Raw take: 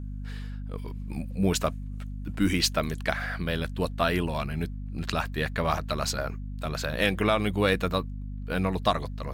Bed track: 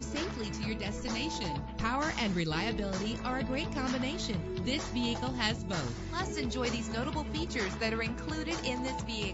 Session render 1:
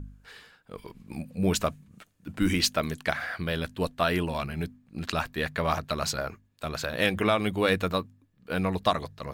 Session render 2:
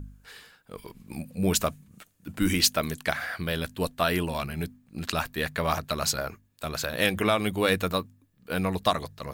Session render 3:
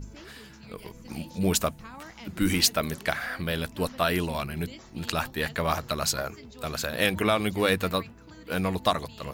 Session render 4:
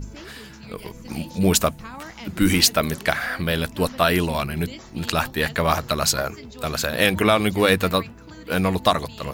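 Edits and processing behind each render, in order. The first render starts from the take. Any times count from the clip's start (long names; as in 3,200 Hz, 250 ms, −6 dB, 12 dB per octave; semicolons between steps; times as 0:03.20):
hum removal 50 Hz, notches 5
high-shelf EQ 7,300 Hz +11 dB
mix in bed track −12.5 dB
level +6.5 dB; brickwall limiter −3 dBFS, peak gain reduction 2 dB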